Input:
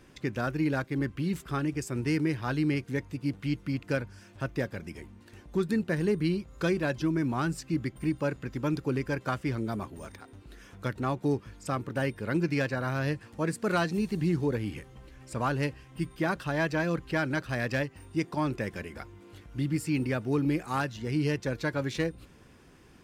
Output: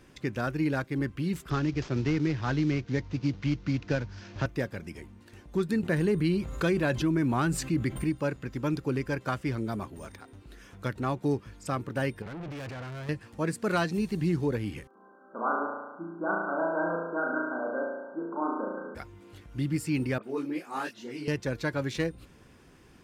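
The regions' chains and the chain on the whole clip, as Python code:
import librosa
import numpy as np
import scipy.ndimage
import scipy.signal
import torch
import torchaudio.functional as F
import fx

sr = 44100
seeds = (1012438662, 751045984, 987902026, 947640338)

y = fx.chain(x, sr, fx.cvsd(bps=32000),
    fx.low_shelf(hz=95.0, db=8.0),
    fx.band_squash(depth_pct=70), at=(1.5, 4.46))
y = fx.chain(y, sr, fx.peak_eq(hz=5300.0, db=-6.5, octaves=0.3),
    fx.env_flatten(amount_pct=50), at=(5.83, 8.04))
y = fx.chain(y, sr, fx.bass_treble(bass_db=3, treble_db=-11),
    fx.transient(attack_db=-10, sustain_db=9),
    fx.tube_stage(drive_db=37.0, bias=0.4), at=(12.22, 13.09))
y = fx.chain(y, sr, fx.brickwall_bandpass(low_hz=180.0, high_hz=1600.0),
    fx.low_shelf(hz=380.0, db=-10.0),
    fx.room_flutter(wall_m=6.1, rt60_s=1.2), at=(14.87, 18.95))
y = fx.chain(y, sr, fx.highpass(hz=220.0, slope=24),
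    fx.dispersion(late='highs', ms=58.0, hz=2900.0),
    fx.detune_double(cents=43), at=(20.18, 21.28))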